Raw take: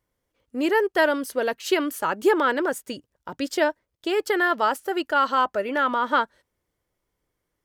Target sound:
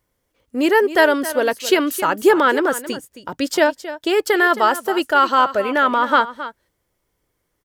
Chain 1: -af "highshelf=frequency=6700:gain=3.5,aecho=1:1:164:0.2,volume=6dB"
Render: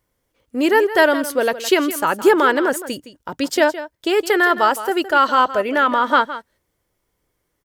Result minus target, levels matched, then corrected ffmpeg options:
echo 104 ms early
-af "highshelf=frequency=6700:gain=3.5,aecho=1:1:268:0.2,volume=6dB"

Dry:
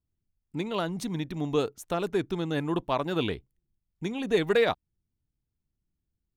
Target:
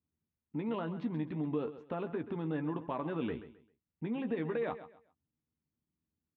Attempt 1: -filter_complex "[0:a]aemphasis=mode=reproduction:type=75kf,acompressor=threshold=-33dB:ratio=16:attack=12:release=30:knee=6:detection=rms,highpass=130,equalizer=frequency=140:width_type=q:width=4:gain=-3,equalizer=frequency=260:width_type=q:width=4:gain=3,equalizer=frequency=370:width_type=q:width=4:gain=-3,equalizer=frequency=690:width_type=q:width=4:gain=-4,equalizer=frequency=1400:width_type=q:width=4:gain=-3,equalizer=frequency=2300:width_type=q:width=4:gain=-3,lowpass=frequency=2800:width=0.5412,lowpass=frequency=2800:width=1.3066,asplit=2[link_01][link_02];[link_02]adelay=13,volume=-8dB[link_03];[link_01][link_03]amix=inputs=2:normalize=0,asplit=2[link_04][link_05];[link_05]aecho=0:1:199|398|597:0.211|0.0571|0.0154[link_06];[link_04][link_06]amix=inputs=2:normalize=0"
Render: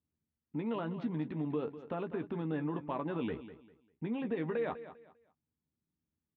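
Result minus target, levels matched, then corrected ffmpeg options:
echo 67 ms late
-filter_complex "[0:a]aemphasis=mode=reproduction:type=75kf,acompressor=threshold=-33dB:ratio=16:attack=12:release=30:knee=6:detection=rms,highpass=130,equalizer=frequency=140:width_type=q:width=4:gain=-3,equalizer=frequency=260:width_type=q:width=4:gain=3,equalizer=frequency=370:width_type=q:width=4:gain=-3,equalizer=frequency=690:width_type=q:width=4:gain=-4,equalizer=frequency=1400:width_type=q:width=4:gain=-3,equalizer=frequency=2300:width_type=q:width=4:gain=-3,lowpass=frequency=2800:width=0.5412,lowpass=frequency=2800:width=1.3066,asplit=2[link_01][link_02];[link_02]adelay=13,volume=-8dB[link_03];[link_01][link_03]amix=inputs=2:normalize=0,asplit=2[link_04][link_05];[link_05]aecho=0:1:132|264|396:0.211|0.0571|0.0154[link_06];[link_04][link_06]amix=inputs=2:normalize=0"

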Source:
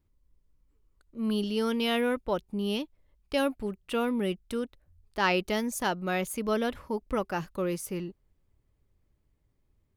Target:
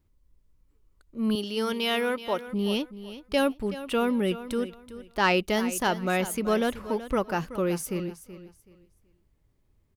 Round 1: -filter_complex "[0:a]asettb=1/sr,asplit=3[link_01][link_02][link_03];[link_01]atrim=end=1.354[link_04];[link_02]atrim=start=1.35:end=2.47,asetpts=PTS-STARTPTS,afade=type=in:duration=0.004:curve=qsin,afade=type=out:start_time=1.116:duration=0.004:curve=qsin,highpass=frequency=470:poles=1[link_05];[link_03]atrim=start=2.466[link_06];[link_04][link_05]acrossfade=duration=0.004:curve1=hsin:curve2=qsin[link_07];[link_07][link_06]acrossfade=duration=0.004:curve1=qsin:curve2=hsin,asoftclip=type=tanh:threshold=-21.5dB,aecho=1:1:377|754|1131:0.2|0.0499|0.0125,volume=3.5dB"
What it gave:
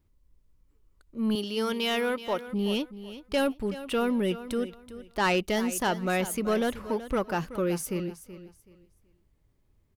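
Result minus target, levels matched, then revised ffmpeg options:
soft clipping: distortion +15 dB
-filter_complex "[0:a]asettb=1/sr,asplit=3[link_01][link_02][link_03];[link_01]atrim=end=1.354[link_04];[link_02]atrim=start=1.35:end=2.47,asetpts=PTS-STARTPTS,afade=type=in:duration=0.004:curve=qsin,afade=type=out:start_time=1.116:duration=0.004:curve=qsin,highpass=frequency=470:poles=1[link_05];[link_03]atrim=start=2.466[link_06];[link_04][link_05]acrossfade=duration=0.004:curve1=hsin:curve2=qsin[link_07];[link_07][link_06]acrossfade=duration=0.004:curve1=qsin:curve2=hsin,asoftclip=type=tanh:threshold=-11.5dB,aecho=1:1:377|754|1131:0.2|0.0499|0.0125,volume=3.5dB"

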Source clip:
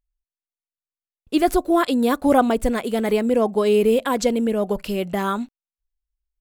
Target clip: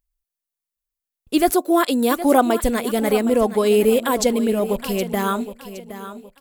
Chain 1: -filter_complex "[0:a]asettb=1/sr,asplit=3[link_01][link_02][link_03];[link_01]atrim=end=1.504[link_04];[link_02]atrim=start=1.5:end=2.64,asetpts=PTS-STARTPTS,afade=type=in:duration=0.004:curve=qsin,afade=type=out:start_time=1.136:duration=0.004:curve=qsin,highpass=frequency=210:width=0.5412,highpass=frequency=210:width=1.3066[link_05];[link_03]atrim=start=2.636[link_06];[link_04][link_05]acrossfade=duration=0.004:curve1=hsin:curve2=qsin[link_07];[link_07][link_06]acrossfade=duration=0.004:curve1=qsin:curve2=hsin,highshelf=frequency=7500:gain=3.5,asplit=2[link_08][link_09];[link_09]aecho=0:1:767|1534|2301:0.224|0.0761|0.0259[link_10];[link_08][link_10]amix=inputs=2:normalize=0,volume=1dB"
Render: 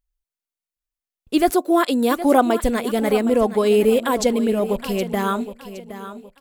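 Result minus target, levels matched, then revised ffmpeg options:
8,000 Hz band −3.5 dB
-filter_complex "[0:a]asettb=1/sr,asplit=3[link_01][link_02][link_03];[link_01]atrim=end=1.504[link_04];[link_02]atrim=start=1.5:end=2.64,asetpts=PTS-STARTPTS,afade=type=in:duration=0.004:curve=qsin,afade=type=out:start_time=1.136:duration=0.004:curve=qsin,highpass=frequency=210:width=0.5412,highpass=frequency=210:width=1.3066[link_05];[link_03]atrim=start=2.636[link_06];[link_04][link_05]acrossfade=duration=0.004:curve1=hsin:curve2=qsin[link_07];[link_07][link_06]acrossfade=duration=0.004:curve1=qsin:curve2=hsin,highshelf=frequency=7500:gain=10.5,asplit=2[link_08][link_09];[link_09]aecho=0:1:767|1534|2301:0.224|0.0761|0.0259[link_10];[link_08][link_10]amix=inputs=2:normalize=0,volume=1dB"

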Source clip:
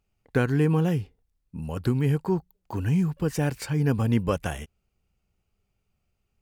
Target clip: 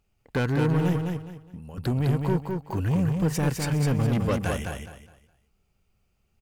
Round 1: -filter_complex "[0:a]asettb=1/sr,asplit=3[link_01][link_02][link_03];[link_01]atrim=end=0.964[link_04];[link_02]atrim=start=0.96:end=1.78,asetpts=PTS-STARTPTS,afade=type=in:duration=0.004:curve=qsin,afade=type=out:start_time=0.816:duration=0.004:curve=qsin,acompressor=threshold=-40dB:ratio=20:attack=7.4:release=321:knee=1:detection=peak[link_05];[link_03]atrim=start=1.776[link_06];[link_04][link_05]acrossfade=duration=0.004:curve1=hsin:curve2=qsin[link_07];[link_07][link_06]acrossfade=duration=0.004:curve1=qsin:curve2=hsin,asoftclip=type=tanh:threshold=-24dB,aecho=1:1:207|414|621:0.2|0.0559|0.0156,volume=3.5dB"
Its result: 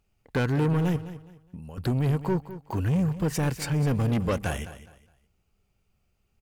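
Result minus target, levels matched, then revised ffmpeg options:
echo-to-direct −9.5 dB
-filter_complex "[0:a]asettb=1/sr,asplit=3[link_01][link_02][link_03];[link_01]atrim=end=0.964[link_04];[link_02]atrim=start=0.96:end=1.78,asetpts=PTS-STARTPTS,afade=type=in:duration=0.004:curve=qsin,afade=type=out:start_time=0.816:duration=0.004:curve=qsin,acompressor=threshold=-40dB:ratio=20:attack=7.4:release=321:knee=1:detection=peak[link_05];[link_03]atrim=start=1.776[link_06];[link_04][link_05]acrossfade=duration=0.004:curve1=hsin:curve2=qsin[link_07];[link_07][link_06]acrossfade=duration=0.004:curve1=qsin:curve2=hsin,asoftclip=type=tanh:threshold=-24dB,aecho=1:1:207|414|621|828:0.596|0.167|0.0467|0.0131,volume=3.5dB"

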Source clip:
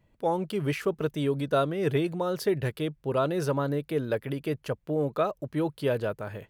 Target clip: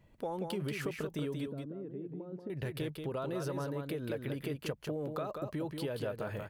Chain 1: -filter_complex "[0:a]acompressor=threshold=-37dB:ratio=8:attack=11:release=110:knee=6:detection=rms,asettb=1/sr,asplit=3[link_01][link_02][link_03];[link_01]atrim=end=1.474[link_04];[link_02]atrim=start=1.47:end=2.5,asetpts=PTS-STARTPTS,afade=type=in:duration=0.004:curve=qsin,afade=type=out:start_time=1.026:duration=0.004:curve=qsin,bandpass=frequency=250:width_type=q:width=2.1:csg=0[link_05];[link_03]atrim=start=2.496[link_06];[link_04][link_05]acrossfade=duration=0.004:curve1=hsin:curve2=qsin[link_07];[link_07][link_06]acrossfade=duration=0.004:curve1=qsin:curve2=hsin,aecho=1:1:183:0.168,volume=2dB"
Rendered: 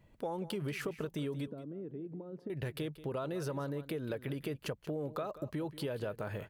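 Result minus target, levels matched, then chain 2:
echo-to-direct −10 dB
-filter_complex "[0:a]acompressor=threshold=-37dB:ratio=8:attack=11:release=110:knee=6:detection=rms,asettb=1/sr,asplit=3[link_01][link_02][link_03];[link_01]atrim=end=1.474[link_04];[link_02]atrim=start=1.47:end=2.5,asetpts=PTS-STARTPTS,afade=type=in:duration=0.004:curve=qsin,afade=type=out:start_time=1.026:duration=0.004:curve=qsin,bandpass=frequency=250:width_type=q:width=2.1:csg=0[link_05];[link_03]atrim=start=2.496[link_06];[link_04][link_05]acrossfade=duration=0.004:curve1=hsin:curve2=qsin[link_07];[link_07][link_06]acrossfade=duration=0.004:curve1=qsin:curve2=hsin,aecho=1:1:183:0.531,volume=2dB"

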